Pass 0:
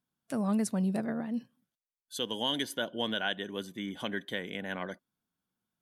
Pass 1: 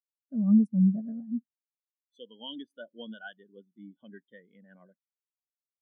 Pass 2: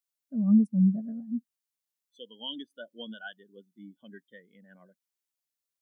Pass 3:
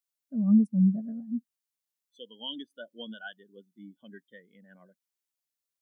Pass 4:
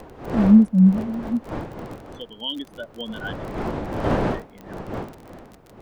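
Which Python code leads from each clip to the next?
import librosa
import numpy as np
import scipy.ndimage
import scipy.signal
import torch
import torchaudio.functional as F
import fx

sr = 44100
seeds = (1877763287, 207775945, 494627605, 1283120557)

y1 = fx.spectral_expand(x, sr, expansion=2.5)
y1 = F.gain(torch.from_numpy(y1), 4.5).numpy()
y2 = fx.high_shelf(y1, sr, hz=2800.0, db=8.0)
y3 = y2
y4 = fx.dmg_wind(y3, sr, seeds[0], corner_hz=580.0, level_db=-39.0)
y4 = fx.dmg_crackle(y4, sr, seeds[1], per_s=34.0, level_db=-40.0)
y4 = F.gain(torch.from_numpy(y4), 8.5).numpy()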